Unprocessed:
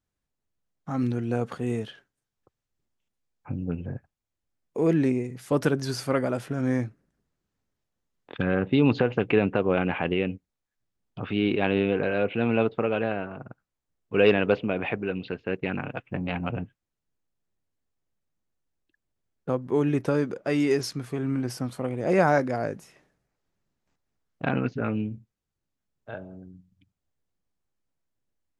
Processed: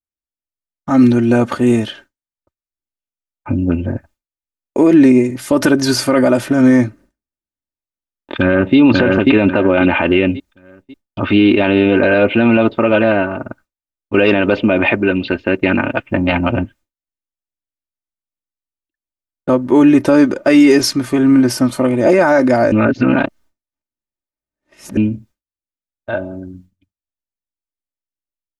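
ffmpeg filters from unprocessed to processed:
-filter_complex "[0:a]asplit=2[a][b];[b]afade=t=in:st=8.35:d=0.01,afade=t=out:st=8.77:d=0.01,aecho=0:1:540|1080|1620|2160:0.630957|0.220835|0.0772923|0.0270523[c];[a][c]amix=inputs=2:normalize=0,asplit=3[d][e][f];[d]atrim=end=22.722[g];[e]atrim=start=22.718:end=24.972,asetpts=PTS-STARTPTS,areverse[h];[f]atrim=start=24.968[i];[g][h]acrossfade=d=0.004:c1=hsin:c2=hsin[j];[j][i]acrossfade=d=0.004:c1=hsin:c2=hsin,agate=range=-33dB:threshold=-51dB:ratio=3:detection=peak,aecho=1:1:3.3:0.7,alimiter=level_in=16dB:limit=-1dB:release=50:level=0:latency=1,volume=-1dB"

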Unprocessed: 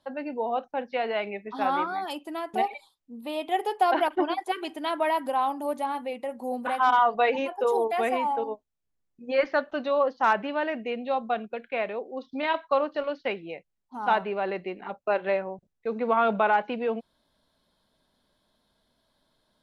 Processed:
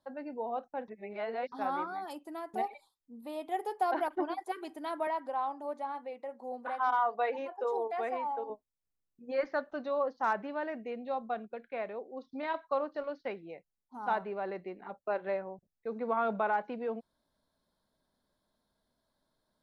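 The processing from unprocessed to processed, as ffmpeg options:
-filter_complex "[0:a]asettb=1/sr,asplit=3[a][b][c];[a]atrim=end=5.074[d];[b]atrim=start=5.07:end=8.5,asetpts=PTS-STARTPTS,afade=t=in:d=0.004:c=qsin,afade=t=out:st=3.426:d=0.004:c=qsin,highpass=340,lowpass=4.8k[e];[c]atrim=start=8.496[f];[d][e]acrossfade=d=0.004:c1=hsin:c2=qsin[g];[g][f]acrossfade=d=0.004:c1=qsin:c2=hsin,asplit=3[h][i][j];[h]atrim=end=0.882[k];[i]atrim=start=0.878:end=1.522,asetpts=PTS-STARTPTS,areverse[l];[j]atrim=start=1.518[m];[k][l]acrossfade=d=0.004:c1=hsin:c2=hsin[n];[n][m]acrossfade=d=0.004:c1=hsin:c2=hsin,equalizer=f=2.9k:t=o:w=0.73:g=-9.5,volume=-7.5dB"

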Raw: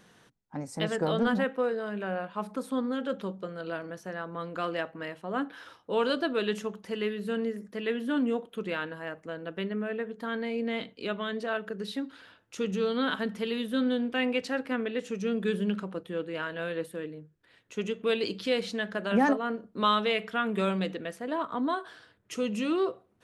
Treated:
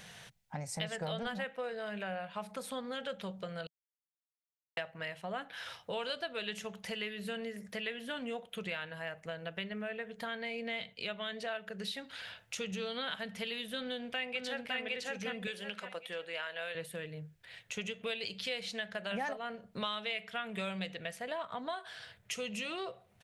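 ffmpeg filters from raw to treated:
-filter_complex "[0:a]asplit=2[a][b];[b]afade=t=in:st=13.79:d=0.01,afade=t=out:st=14.76:d=0.01,aecho=0:1:560|1120|1680:0.944061|0.188812|0.0377624[c];[a][c]amix=inputs=2:normalize=0,asettb=1/sr,asplit=3[d][e][f];[d]atrim=end=15.474[g];[e]atrim=start=15.47:end=16.75,asetpts=PTS-STARTPTS,afade=t=in:d=0.004:c=qsin,afade=t=out:st=1.276:d=0.004:c=qsin,highpass=440[h];[f]atrim=start=16.746[i];[g][h]acrossfade=d=0.004:c1=hsin:c2=qsin[j];[j][i]acrossfade=d=0.004:c1=qsin:c2=hsin,asplit=3[k][l][m];[k]atrim=end=3.67,asetpts=PTS-STARTPTS,afade=t=out:st=3.666:d=0.004:c=hsin[n];[l]atrim=start=3.67:end=4.77,asetpts=PTS-STARTPTS,volume=0[o];[m]atrim=start=4.77,asetpts=PTS-STARTPTS,afade=t=in:d=0.004:c=hsin[p];[n][o][p]concat=n=3:v=0:a=1,firequalizer=gain_entry='entry(160,0);entry(280,-17);entry(450,-7);entry(670,1);entry(1100,-6);entry(2100,5);entry(5000,3)':delay=0.05:min_phase=1,acompressor=threshold=-47dB:ratio=3,volume=7dB"

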